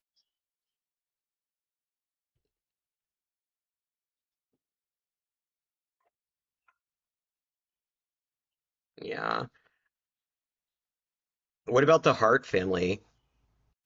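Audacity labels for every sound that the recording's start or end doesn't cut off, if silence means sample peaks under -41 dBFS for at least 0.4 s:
8.980000	9.460000	sound
11.680000	12.960000	sound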